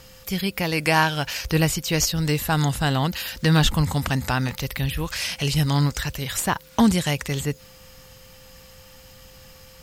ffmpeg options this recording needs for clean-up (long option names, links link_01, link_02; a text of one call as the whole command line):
ffmpeg -i in.wav -af "bandreject=frequency=520:width=30" out.wav